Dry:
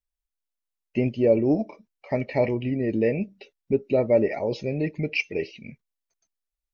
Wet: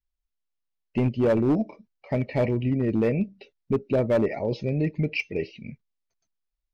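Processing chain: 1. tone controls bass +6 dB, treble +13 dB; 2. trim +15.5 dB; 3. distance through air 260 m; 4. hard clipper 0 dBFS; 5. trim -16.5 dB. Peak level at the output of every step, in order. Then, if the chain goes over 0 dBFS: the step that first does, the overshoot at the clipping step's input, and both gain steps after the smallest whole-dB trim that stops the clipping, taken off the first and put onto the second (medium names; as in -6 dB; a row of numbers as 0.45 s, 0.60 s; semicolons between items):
-7.0 dBFS, +8.5 dBFS, +8.0 dBFS, 0.0 dBFS, -16.5 dBFS; step 2, 8.0 dB; step 2 +7.5 dB, step 5 -8.5 dB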